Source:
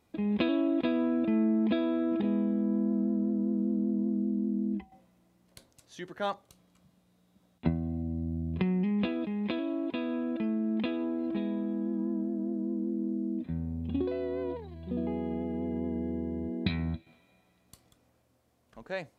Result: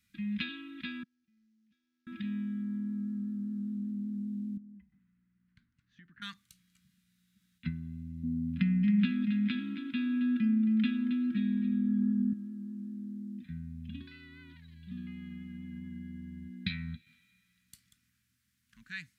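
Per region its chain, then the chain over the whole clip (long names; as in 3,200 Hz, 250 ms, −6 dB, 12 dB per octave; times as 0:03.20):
0:01.03–0:02.07: variable-slope delta modulation 32 kbit/s + noise gate −21 dBFS, range −41 dB + low-shelf EQ 220 Hz +7.5 dB
0:04.57–0:06.22: low-pass filter 1,200 Hz + downward compressor 4 to 1, threshold −44 dBFS
0:08.23–0:12.33: hollow resonant body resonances 250/570/1,400 Hz, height 15 dB, ringing for 50 ms + single-tap delay 271 ms −10.5 dB
whole clip: Chebyshev band-stop filter 210–1,600 Hz, order 3; low-shelf EQ 240 Hz −9 dB; level +1 dB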